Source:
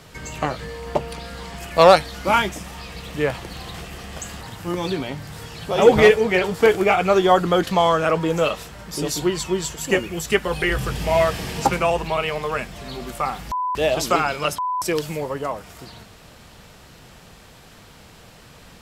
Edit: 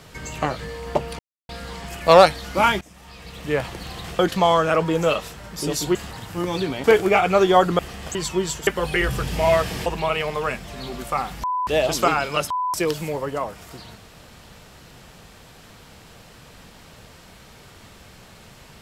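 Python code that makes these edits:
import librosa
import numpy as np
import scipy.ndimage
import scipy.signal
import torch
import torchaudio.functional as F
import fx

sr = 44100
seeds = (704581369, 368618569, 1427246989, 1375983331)

y = fx.edit(x, sr, fx.insert_silence(at_s=1.19, length_s=0.3),
    fx.fade_in_from(start_s=2.51, length_s=0.84, floor_db=-19.5),
    fx.swap(start_s=3.89, length_s=0.36, other_s=7.54, other_length_s=1.76),
    fx.cut(start_s=5.14, length_s=1.45),
    fx.cut(start_s=9.82, length_s=0.53),
    fx.cut(start_s=11.54, length_s=0.4), tone=tone)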